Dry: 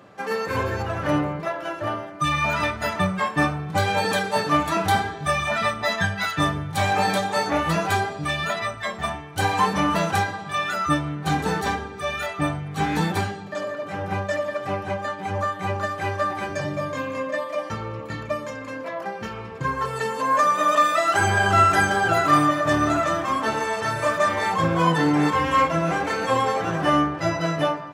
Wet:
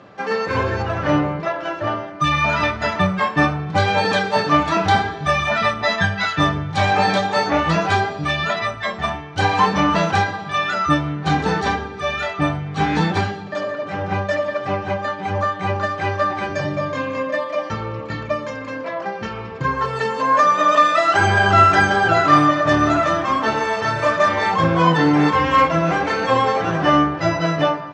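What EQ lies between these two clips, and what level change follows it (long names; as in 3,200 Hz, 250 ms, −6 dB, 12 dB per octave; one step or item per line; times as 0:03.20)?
low-pass filter 5,900 Hz 24 dB per octave
+4.5 dB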